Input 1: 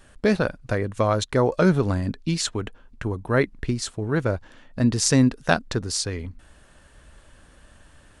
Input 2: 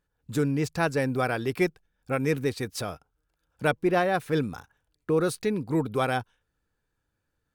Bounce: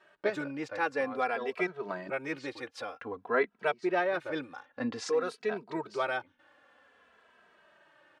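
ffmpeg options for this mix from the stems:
ffmpeg -i stem1.wav -i stem2.wav -filter_complex "[0:a]volume=-0.5dB[link_01];[1:a]highshelf=frequency=4800:gain=8,volume=0dB,asplit=2[link_02][link_03];[link_03]apad=whole_len=361642[link_04];[link_01][link_04]sidechaincompress=threshold=-43dB:ratio=4:attack=27:release=163[link_05];[link_05][link_02]amix=inputs=2:normalize=0,highpass=460,lowpass=2600,asplit=2[link_06][link_07];[link_07]adelay=2.7,afreqshift=-0.52[link_08];[link_06][link_08]amix=inputs=2:normalize=1" out.wav

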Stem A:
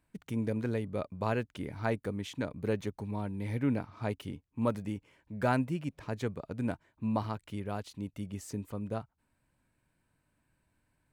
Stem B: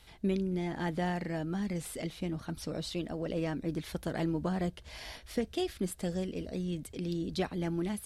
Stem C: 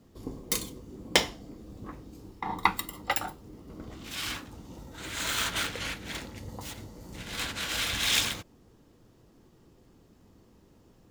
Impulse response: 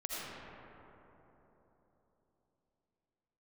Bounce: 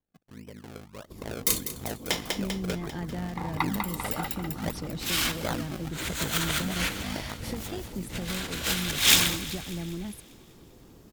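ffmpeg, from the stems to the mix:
-filter_complex "[0:a]highshelf=frequency=6200:gain=11.5,acrusher=samples=32:mix=1:aa=0.000001:lfo=1:lforange=32:lforate=1.6,aeval=exprs='val(0)*sin(2*PI*26*n/s)':channel_layout=same,volume=-10.5dB,asplit=2[link_01][link_02];[1:a]acrossover=split=140[link_03][link_04];[link_04]acompressor=threshold=-45dB:ratio=5[link_05];[link_03][link_05]amix=inputs=2:normalize=0,adelay=2150,volume=-2dB[link_06];[2:a]equalizer=frequency=16000:width_type=o:width=0.95:gain=8.5,adelay=950,volume=-2.5dB,asplit=2[link_07][link_08];[link_08]volume=-16.5dB[link_09];[link_02]apad=whole_len=531603[link_10];[link_07][link_10]sidechaincompress=threshold=-57dB:ratio=8:attack=6.7:release=106[link_11];[link_09]aecho=0:1:197|394|591|788|985|1182|1379|1576|1773:1|0.58|0.336|0.195|0.113|0.0656|0.0381|0.0221|0.0128[link_12];[link_01][link_06][link_11][link_12]amix=inputs=4:normalize=0,dynaudnorm=framelen=130:gausssize=17:maxgain=9dB"

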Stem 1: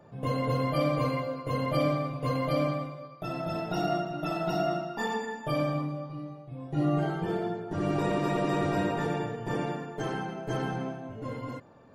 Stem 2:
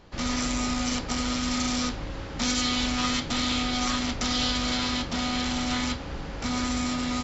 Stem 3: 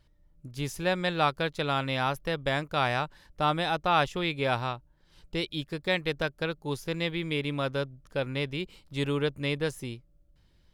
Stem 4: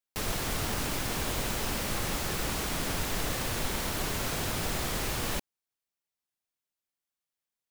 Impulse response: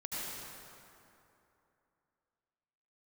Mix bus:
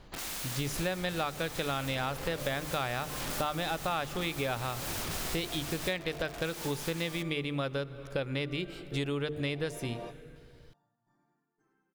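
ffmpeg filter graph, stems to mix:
-filter_complex "[0:a]equalizer=frequency=160:width_type=o:width=0.77:gain=-5,asplit=2[link_01][link_02];[link_02]afreqshift=0.27[link_03];[link_01][link_03]amix=inputs=2:normalize=1,adelay=1600,volume=-10dB[link_04];[1:a]bandreject=frequency=5400:width=8,acrossover=split=370|3000[link_05][link_06][link_07];[link_05]acompressor=threshold=-32dB:ratio=6[link_08];[link_08][link_06][link_07]amix=inputs=3:normalize=0,aeval=exprs='(mod(33.5*val(0)+1,2)-1)/33.5':channel_layout=same,volume=-3.5dB,asplit=2[link_09][link_10];[link_10]volume=-21.5dB[link_11];[2:a]equalizer=frequency=970:width_type=o:width=0.26:gain=-5.5,bandreject=frequency=50:width_type=h:width=6,bandreject=frequency=100:width_type=h:width=6,bandreject=frequency=150:width_type=h:width=6,bandreject=frequency=200:width_type=h:width=6,bandreject=frequency=250:width_type=h:width=6,bandreject=frequency=300:width_type=h:width=6,bandreject=frequency=350:width_type=h:width=6,bandreject=frequency=400:width_type=h:width=6,bandreject=frequency=450:width_type=h:width=6,acontrast=28,volume=0.5dB,asplit=3[link_12][link_13][link_14];[link_13]volume=-21.5dB[link_15];[3:a]adelay=500,volume=-6dB[link_16];[link_14]apad=whole_len=597186[link_17];[link_04][link_17]sidechaingate=range=-29dB:threshold=-47dB:ratio=16:detection=peak[link_18];[4:a]atrim=start_sample=2205[link_19];[link_11][link_15]amix=inputs=2:normalize=0[link_20];[link_20][link_19]afir=irnorm=-1:irlink=0[link_21];[link_18][link_09][link_12][link_16][link_21]amix=inputs=5:normalize=0,acompressor=threshold=-30dB:ratio=6"

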